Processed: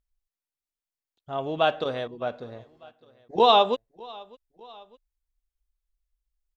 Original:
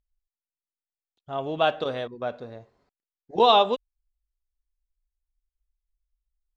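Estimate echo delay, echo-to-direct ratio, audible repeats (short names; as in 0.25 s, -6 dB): 0.604 s, -22.5 dB, 2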